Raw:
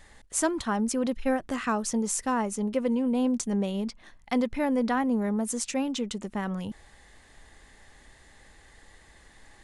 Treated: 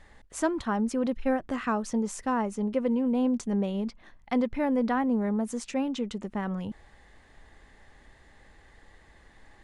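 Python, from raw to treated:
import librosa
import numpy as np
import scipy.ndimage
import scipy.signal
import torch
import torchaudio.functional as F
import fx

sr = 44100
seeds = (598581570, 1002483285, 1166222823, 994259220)

y = fx.lowpass(x, sr, hz=2300.0, slope=6)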